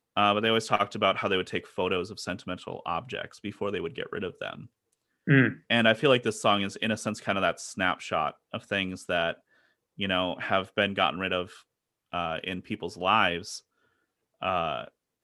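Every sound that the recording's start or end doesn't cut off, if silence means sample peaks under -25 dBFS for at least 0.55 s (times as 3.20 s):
5.28–9.31 s
10.01–11.42 s
12.14–13.38 s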